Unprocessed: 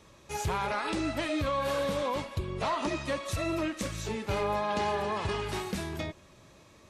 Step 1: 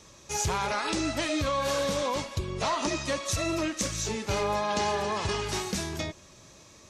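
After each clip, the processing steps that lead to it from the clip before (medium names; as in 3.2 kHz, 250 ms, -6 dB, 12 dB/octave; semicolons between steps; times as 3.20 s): peaking EQ 6.1 kHz +11 dB 1 oct; trim +1.5 dB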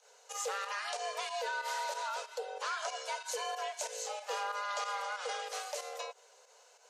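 frequency shift +390 Hz; volume shaper 93 bpm, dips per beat 2, -9 dB, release 89 ms; trim -8.5 dB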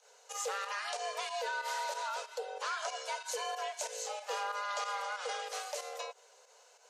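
no audible change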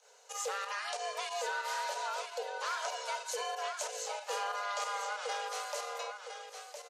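delay 1011 ms -7.5 dB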